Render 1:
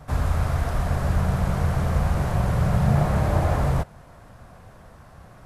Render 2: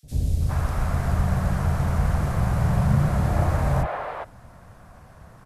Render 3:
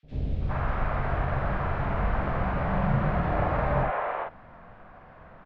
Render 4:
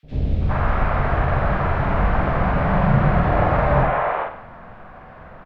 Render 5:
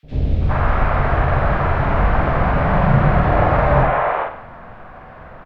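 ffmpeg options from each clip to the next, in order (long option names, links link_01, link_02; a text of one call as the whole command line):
ffmpeg -i in.wav -filter_complex "[0:a]acrossover=split=450|3400[link_01][link_02][link_03];[link_01]adelay=30[link_04];[link_02]adelay=410[link_05];[link_04][link_05][link_03]amix=inputs=3:normalize=0" out.wav
ffmpeg -i in.wav -filter_complex "[0:a]lowpass=frequency=2900:width=0.5412,lowpass=frequency=2900:width=1.3066,equalizer=frequency=87:width_type=o:width=1.9:gain=-11.5,asplit=2[link_01][link_02];[link_02]adelay=46,volume=-2.5dB[link_03];[link_01][link_03]amix=inputs=2:normalize=0" out.wav
ffmpeg -i in.wav -af "aecho=1:1:96|192|288|384:0.251|0.1|0.0402|0.0161,volume=8dB" out.wav
ffmpeg -i in.wav -af "equalizer=frequency=190:width_type=o:width=0.31:gain=-3.5,volume=3dB" out.wav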